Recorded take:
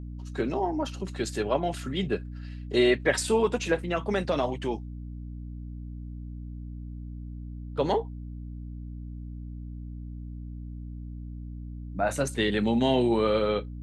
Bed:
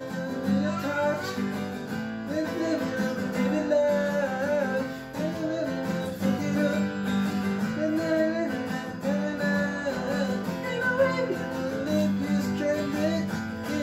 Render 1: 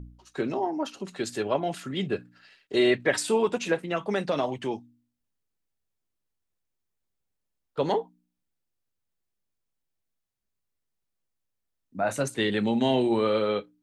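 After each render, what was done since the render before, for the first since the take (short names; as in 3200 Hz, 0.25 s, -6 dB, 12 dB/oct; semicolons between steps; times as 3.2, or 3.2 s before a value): de-hum 60 Hz, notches 5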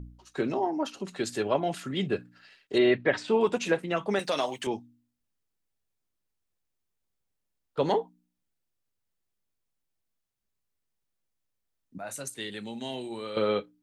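2.78–3.41 air absorption 190 m; 4.19–4.67 RIAA curve recording; 11.98–13.37 pre-emphasis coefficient 0.8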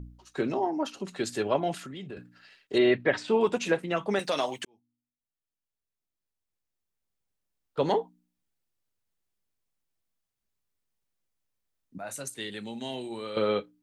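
1.77–2.17 compressor 4:1, threshold -39 dBFS; 4.65–7.81 fade in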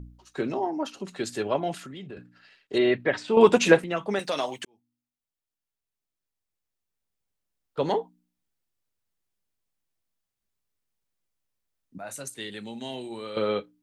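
1.99–2.73 high shelf 8300 Hz -9 dB; 3.37–3.84 gain +9 dB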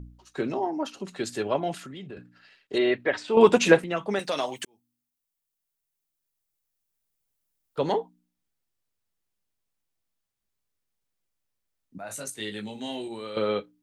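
2.75–3.35 bell 150 Hz -9.5 dB 1.1 oct; 4.56–7.79 high shelf 7600 Hz +11 dB; 12.08–13.08 doubler 19 ms -3 dB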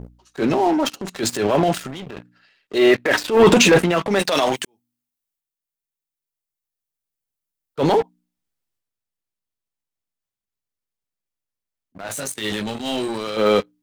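sample leveller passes 3; transient shaper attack -9 dB, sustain +6 dB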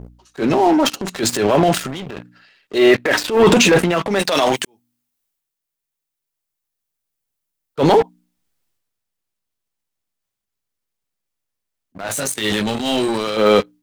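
transient shaper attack -2 dB, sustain +4 dB; AGC gain up to 6 dB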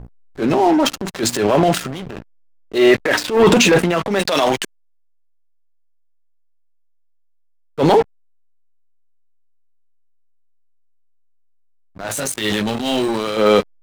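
backlash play -29.5 dBFS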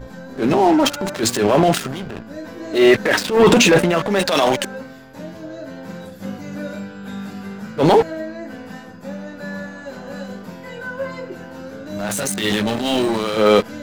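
add bed -4 dB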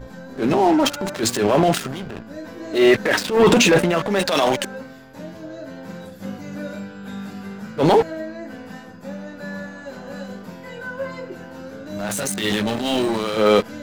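gain -2 dB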